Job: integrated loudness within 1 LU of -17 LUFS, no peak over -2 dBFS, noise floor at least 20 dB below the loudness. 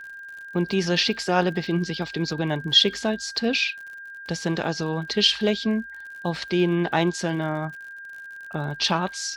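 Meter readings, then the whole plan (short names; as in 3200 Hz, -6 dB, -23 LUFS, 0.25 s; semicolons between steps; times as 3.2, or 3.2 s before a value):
ticks 58/s; steady tone 1600 Hz; tone level -37 dBFS; loudness -24.0 LUFS; peak -4.5 dBFS; loudness target -17.0 LUFS
-> de-click; notch 1600 Hz, Q 30; gain +7 dB; limiter -2 dBFS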